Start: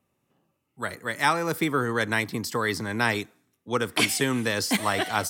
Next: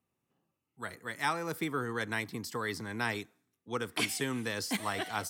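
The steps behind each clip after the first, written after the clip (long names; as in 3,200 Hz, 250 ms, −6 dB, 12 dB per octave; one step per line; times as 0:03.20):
notch filter 580 Hz, Q 12
level −9 dB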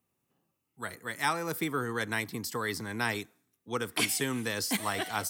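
high-shelf EQ 8,500 Hz +8 dB
level +2 dB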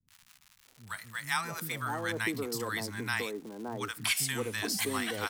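surface crackle 240 per second −41 dBFS
three-band delay without the direct sound lows, highs, mids 80/650 ms, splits 200/870 Hz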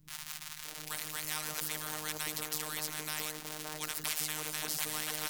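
phases set to zero 153 Hz
every bin compressed towards the loudest bin 4 to 1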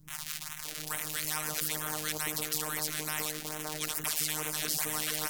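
in parallel at −11 dB: sine wavefolder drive 6 dB, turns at −9 dBFS
on the sum: auto-filter notch sine 2.3 Hz 830–4,800 Hz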